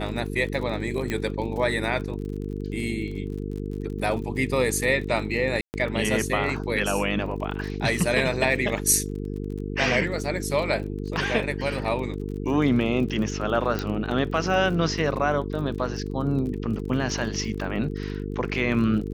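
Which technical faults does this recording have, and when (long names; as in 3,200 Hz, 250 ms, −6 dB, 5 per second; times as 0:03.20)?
mains buzz 50 Hz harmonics 9 −31 dBFS
surface crackle 37 per second −34 dBFS
0:01.10: click −14 dBFS
0:05.61–0:05.74: drop-out 129 ms
0:13.79: click −14 dBFS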